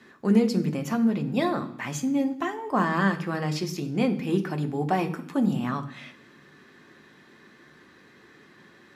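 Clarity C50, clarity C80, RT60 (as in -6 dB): 14.0 dB, 16.5 dB, 0.65 s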